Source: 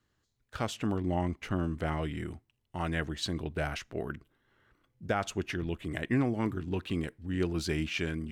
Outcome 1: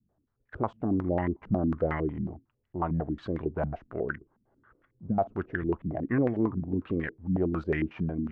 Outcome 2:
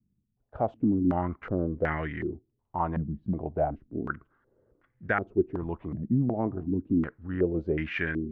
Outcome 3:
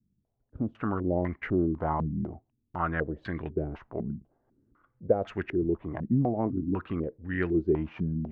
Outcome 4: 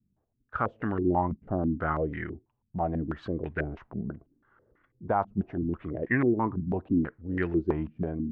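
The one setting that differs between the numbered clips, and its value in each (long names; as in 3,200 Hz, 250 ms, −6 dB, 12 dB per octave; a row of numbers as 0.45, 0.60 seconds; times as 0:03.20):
low-pass on a step sequencer, speed: 11, 2.7, 4, 6.1 Hertz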